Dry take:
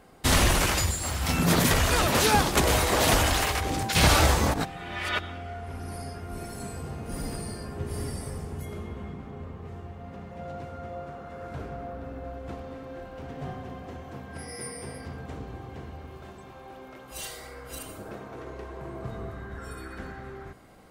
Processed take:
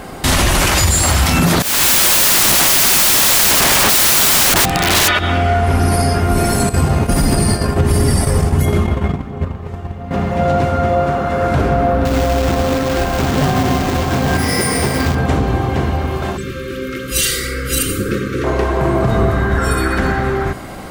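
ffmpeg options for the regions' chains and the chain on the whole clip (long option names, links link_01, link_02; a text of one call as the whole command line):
ffmpeg -i in.wav -filter_complex "[0:a]asettb=1/sr,asplit=3[link_01][link_02][link_03];[link_01]atrim=end=1.624[link_04];[link_02]atrim=start=1.62:end=5.08,asetpts=PTS-STARTPTS,afade=type=in:duration=0.004:curve=qsin,afade=type=out:start_time=3.456:duration=0.004:curve=qsin,acrossover=split=240|4400[link_05][link_06][link_07];[link_05]acompressor=threshold=-28dB:ratio=4[link_08];[link_06]acompressor=threshold=-31dB:ratio=4[link_09];[link_07]acompressor=threshold=-32dB:ratio=4[link_10];[link_08][link_09][link_10]amix=inputs=3:normalize=0,aeval=exprs='(mod(33.5*val(0)+1,2)-1)/33.5':channel_layout=same[link_11];[link_03]atrim=start=5.076[link_12];[link_04][link_11]acrossfade=duration=0.004:curve1=hsin:curve2=qsin[link_13];[link_13][link_12]acrossfade=duration=0.004:curve1=qsin:curve2=hsin,asettb=1/sr,asplit=3[link_14][link_15][link_16];[link_14]atrim=end=6.694[link_17];[link_15]atrim=start=6.69:end=10.11,asetpts=PTS-STARTPTS,afade=type=in:duration=0.004:curve=qsin,afade=type=out:start_time=3.416:duration=0.004:curve=qsin,agate=range=-12dB:threshold=-38dB:ratio=16:release=100:detection=peak,aphaser=in_gain=1:out_gain=1:delay=2.2:decay=0.22:speed=1.5:type=triangular[link_18];[link_16]atrim=start=10.106[link_19];[link_17][link_18]acrossfade=duration=0.004:curve1=hsin:curve2=qsin[link_20];[link_20][link_19]acrossfade=duration=0.004:curve1=qsin:curve2=hsin,asettb=1/sr,asplit=3[link_21][link_22][link_23];[link_21]atrim=end=12.054[link_24];[link_22]atrim=start=12.05:end=15.15,asetpts=PTS-STARTPTS,afade=type=in:duration=0.004:curve=qsin,afade=type=out:start_time=3.096:duration=0.004:curve=qsin,acrusher=bits=2:mode=log:mix=0:aa=0.000001,equalizer=frequency=11000:width=1.7:gain=-8,aecho=1:1:840:0.447,atrim=end_sample=136710[link_25];[link_23]atrim=start=15.146[link_26];[link_24][link_25]acrossfade=duration=0.004:curve1=hsin:curve2=qsin[link_27];[link_27][link_26]acrossfade=duration=0.004:curve1=qsin:curve2=hsin,asettb=1/sr,asplit=3[link_28][link_29][link_30];[link_28]atrim=end=16.374[link_31];[link_29]atrim=start=16.37:end=18.44,asetpts=PTS-STARTPTS,afade=type=in:duration=0.004:curve=qsin,afade=type=out:start_time=2.066:duration=0.004:curve=qsin,asuperstop=centerf=790:order=20:qfactor=1.4,equalizer=frequency=910:width_type=o:width=0.82:gain=-10[link_32];[link_30]atrim=start=18.436[link_33];[link_31][link_32]acrossfade=duration=0.004:curve1=hsin:curve2=qsin[link_34];[link_34][link_33]acrossfade=duration=0.004:curve1=qsin:curve2=hsin,bandreject=frequency=470:width=12,acompressor=threshold=-31dB:ratio=2.5,alimiter=level_in=27.5dB:limit=-1dB:release=50:level=0:latency=1,volume=-3.5dB" out.wav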